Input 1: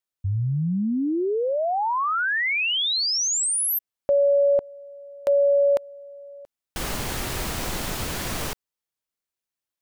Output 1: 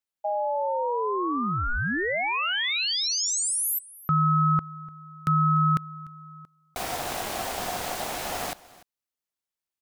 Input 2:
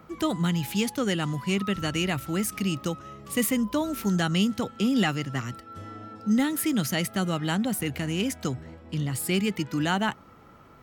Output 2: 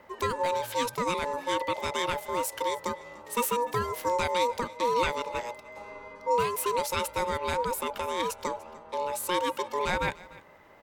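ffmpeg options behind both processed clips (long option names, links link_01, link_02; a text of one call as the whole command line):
ffmpeg -i in.wav -af "aecho=1:1:296:0.0944,aeval=exprs='val(0)*sin(2*PI*720*n/s)':channel_layout=same" out.wav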